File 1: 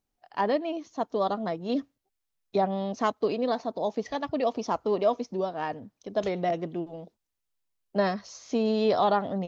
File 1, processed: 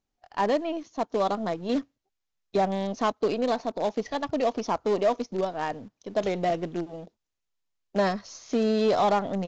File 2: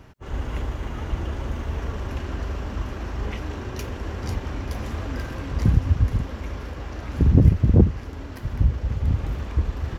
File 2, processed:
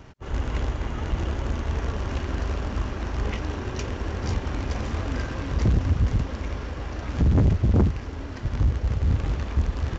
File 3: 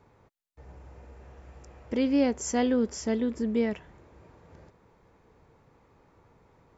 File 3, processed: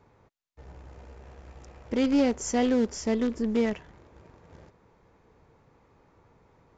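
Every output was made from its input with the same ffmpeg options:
-filter_complex "[0:a]asplit=2[s0][s1];[s1]acrusher=bits=5:dc=4:mix=0:aa=0.000001,volume=0.316[s2];[s0][s2]amix=inputs=2:normalize=0,asoftclip=type=tanh:threshold=0.188,aresample=16000,aresample=44100"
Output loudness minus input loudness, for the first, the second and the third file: +1.0 LU, -1.5 LU, +1.0 LU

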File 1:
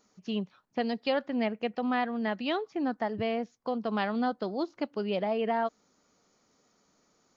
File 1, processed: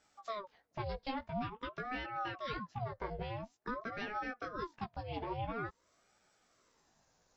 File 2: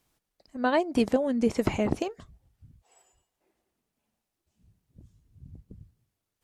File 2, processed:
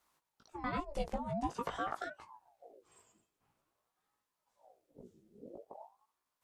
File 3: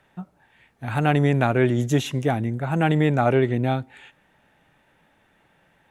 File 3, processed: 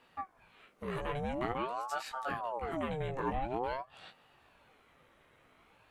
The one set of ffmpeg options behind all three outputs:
-af "acompressor=threshold=0.0112:ratio=2,flanger=delay=16:depth=2.6:speed=0.79,aeval=exprs='val(0)*sin(2*PI*660*n/s+660*0.6/0.48*sin(2*PI*0.48*n/s))':c=same,volume=1.33"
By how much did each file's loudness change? -10.0 LU, -13.0 LU, -16.0 LU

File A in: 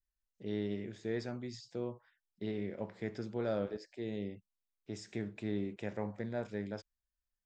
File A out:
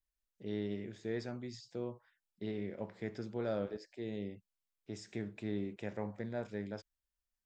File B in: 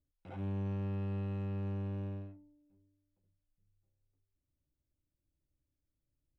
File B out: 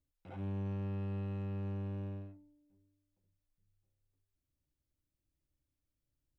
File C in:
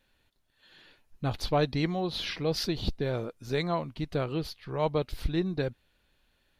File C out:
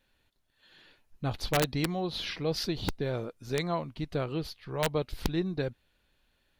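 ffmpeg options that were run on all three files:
-af "aeval=exprs='(mod(7.08*val(0)+1,2)-1)/7.08':c=same,volume=0.841"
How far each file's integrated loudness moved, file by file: -1.5 LU, -1.5 LU, -1.5 LU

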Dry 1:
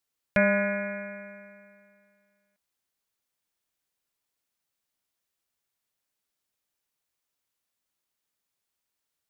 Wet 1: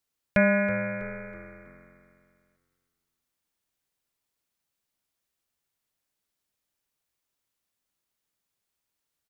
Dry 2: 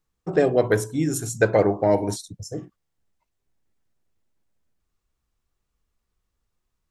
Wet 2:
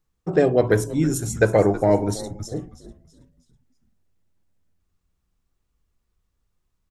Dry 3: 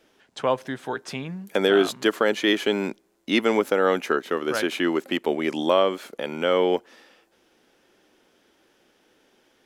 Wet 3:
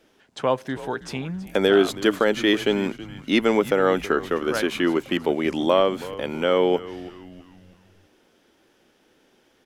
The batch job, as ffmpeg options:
-filter_complex "[0:a]lowshelf=f=290:g=4.5,asplit=5[s0][s1][s2][s3][s4];[s1]adelay=324,afreqshift=-89,volume=0.15[s5];[s2]adelay=648,afreqshift=-178,volume=0.0646[s6];[s3]adelay=972,afreqshift=-267,volume=0.0275[s7];[s4]adelay=1296,afreqshift=-356,volume=0.0119[s8];[s0][s5][s6][s7][s8]amix=inputs=5:normalize=0"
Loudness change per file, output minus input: +1.0 LU, +1.0 LU, +1.5 LU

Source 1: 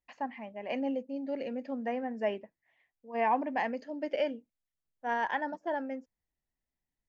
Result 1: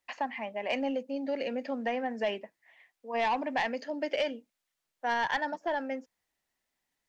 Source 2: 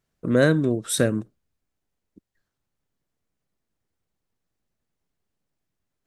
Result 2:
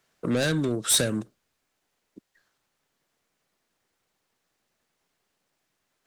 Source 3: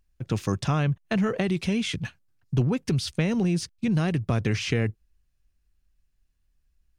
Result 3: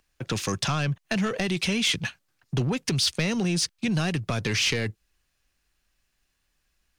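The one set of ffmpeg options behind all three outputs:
-filter_complex "[0:a]asplit=2[s0][s1];[s1]highpass=f=720:p=1,volume=11.2,asoftclip=type=tanh:threshold=0.531[s2];[s0][s2]amix=inputs=2:normalize=0,lowpass=f=7500:p=1,volume=0.501,acrossover=split=200|3000[s3][s4][s5];[s4]acompressor=threshold=0.0282:ratio=2[s6];[s3][s6][s5]amix=inputs=3:normalize=0,volume=0.708"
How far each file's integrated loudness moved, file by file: +1.5 LU, -2.5 LU, +0.5 LU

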